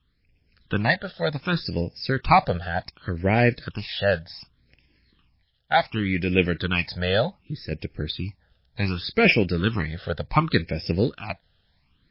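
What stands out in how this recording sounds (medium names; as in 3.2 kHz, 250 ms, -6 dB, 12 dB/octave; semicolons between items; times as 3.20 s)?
phasing stages 8, 0.67 Hz, lowest notch 300–1200 Hz; random-step tremolo; MP3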